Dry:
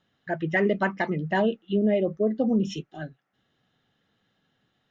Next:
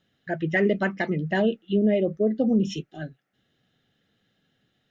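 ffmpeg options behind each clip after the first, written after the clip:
ffmpeg -i in.wav -af "equalizer=frequency=1000:width_type=o:width=0.65:gain=-10.5,volume=2dB" out.wav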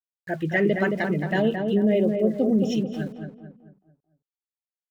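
ffmpeg -i in.wav -filter_complex "[0:a]aeval=exprs='val(0)*gte(abs(val(0)),0.00473)':channel_layout=same,asplit=2[link_01][link_02];[link_02]adelay=220,lowpass=frequency=1500:poles=1,volume=-4.5dB,asplit=2[link_03][link_04];[link_04]adelay=220,lowpass=frequency=1500:poles=1,volume=0.44,asplit=2[link_05][link_06];[link_06]adelay=220,lowpass=frequency=1500:poles=1,volume=0.44,asplit=2[link_07][link_08];[link_08]adelay=220,lowpass=frequency=1500:poles=1,volume=0.44,asplit=2[link_09][link_10];[link_10]adelay=220,lowpass=frequency=1500:poles=1,volume=0.44[link_11];[link_01][link_03][link_05][link_07][link_09][link_11]amix=inputs=6:normalize=0" out.wav

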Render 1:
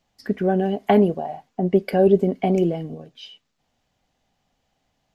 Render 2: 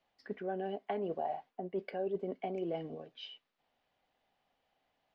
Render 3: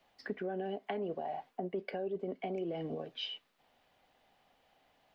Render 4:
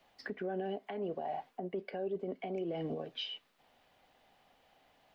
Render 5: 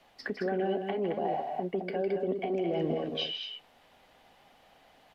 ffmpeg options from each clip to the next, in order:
ffmpeg -i in.wav -filter_complex "[0:a]areverse,acompressor=threshold=-26dB:ratio=6,areverse,acrossover=split=320 4300:gain=0.224 1 0.0631[link_01][link_02][link_03];[link_01][link_02][link_03]amix=inputs=3:normalize=0,volume=-4.5dB" out.wav
ffmpeg -i in.wav -filter_complex "[0:a]acrossover=split=400|1500[link_01][link_02][link_03];[link_02]alimiter=level_in=12dB:limit=-24dB:level=0:latency=1,volume=-12dB[link_04];[link_01][link_04][link_03]amix=inputs=3:normalize=0,acompressor=threshold=-44dB:ratio=5,volume=9dB" out.wav
ffmpeg -i in.wav -af "alimiter=level_in=7.5dB:limit=-24dB:level=0:latency=1:release=215,volume=-7.5dB,volume=2.5dB" out.wav
ffmpeg -i in.wav -filter_complex "[0:a]asplit=2[link_01][link_02];[link_02]aecho=0:1:157.4|218.7:0.355|0.501[link_03];[link_01][link_03]amix=inputs=2:normalize=0,aresample=32000,aresample=44100,volume=6dB" out.wav

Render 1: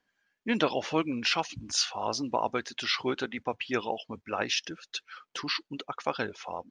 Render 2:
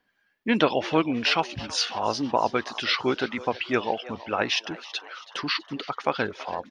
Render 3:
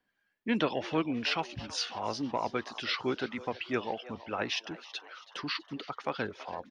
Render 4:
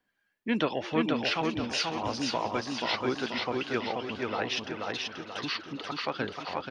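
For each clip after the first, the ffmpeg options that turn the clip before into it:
ffmpeg -i in.wav -filter_complex "[0:a]equalizer=frequency=6800:width=1.7:gain=-9.5,asplit=7[link_01][link_02][link_03][link_04][link_05][link_06][link_07];[link_02]adelay=326,afreqshift=120,volume=-18dB[link_08];[link_03]adelay=652,afreqshift=240,volume=-22.3dB[link_09];[link_04]adelay=978,afreqshift=360,volume=-26.6dB[link_10];[link_05]adelay=1304,afreqshift=480,volume=-30.9dB[link_11];[link_06]adelay=1630,afreqshift=600,volume=-35.2dB[link_12];[link_07]adelay=1956,afreqshift=720,volume=-39.5dB[link_13];[link_01][link_08][link_09][link_10][link_11][link_12][link_13]amix=inputs=7:normalize=0,volume=5.5dB" out.wav
ffmpeg -i in.wav -filter_complex "[0:a]lowshelf=frequency=370:gain=3,acrossover=split=470|890[link_01][link_02][link_03];[link_02]asoftclip=type=tanh:threshold=-24dB[link_04];[link_01][link_04][link_03]amix=inputs=3:normalize=0,volume=-8dB" out.wav
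ffmpeg -i in.wav -af "aecho=1:1:483|966|1449|1932|2415|2898:0.708|0.326|0.15|0.0689|0.0317|0.0146,volume=1dB" out.wav

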